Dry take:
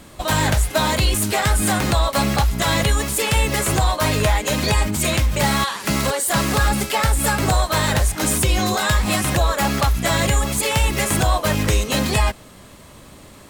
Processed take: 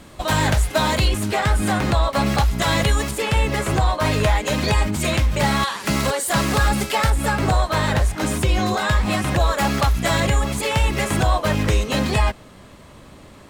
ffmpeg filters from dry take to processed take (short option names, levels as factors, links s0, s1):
-af "asetnsamples=n=441:p=0,asendcmd='1.08 lowpass f 2800;2.26 lowpass f 6500;3.11 lowpass f 2600;4.05 lowpass f 4400;5.63 lowpass f 7500;7.1 lowpass f 2800;9.4 lowpass f 6600;10.2 lowpass f 3600',lowpass=f=6500:p=1"